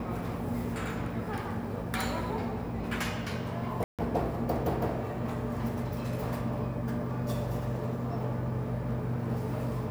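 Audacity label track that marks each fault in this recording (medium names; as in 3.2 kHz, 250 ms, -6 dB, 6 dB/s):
3.840000	3.990000	dropout 147 ms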